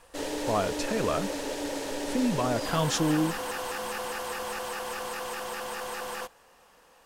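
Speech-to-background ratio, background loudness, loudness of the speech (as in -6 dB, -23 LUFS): 4.0 dB, -33.5 LUFS, -29.5 LUFS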